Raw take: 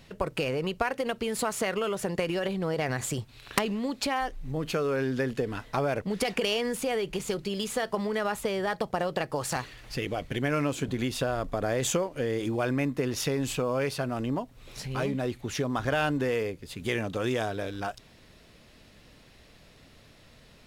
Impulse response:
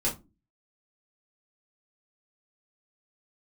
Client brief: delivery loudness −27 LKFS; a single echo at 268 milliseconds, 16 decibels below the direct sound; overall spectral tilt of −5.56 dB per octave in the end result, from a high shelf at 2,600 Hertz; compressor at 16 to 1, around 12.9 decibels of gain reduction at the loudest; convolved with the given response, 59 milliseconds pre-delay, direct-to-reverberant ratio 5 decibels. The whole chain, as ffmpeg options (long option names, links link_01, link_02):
-filter_complex "[0:a]highshelf=frequency=2600:gain=-7,acompressor=threshold=-36dB:ratio=16,aecho=1:1:268:0.158,asplit=2[link_01][link_02];[1:a]atrim=start_sample=2205,adelay=59[link_03];[link_02][link_03]afir=irnorm=-1:irlink=0,volume=-12.5dB[link_04];[link_01][link_04]amix=inputs=2:normalize=0,volume=12dB"